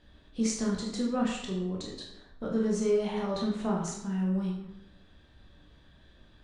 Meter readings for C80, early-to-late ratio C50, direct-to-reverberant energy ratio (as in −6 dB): 6.5 dB, 3.5 dB, −3.0 dB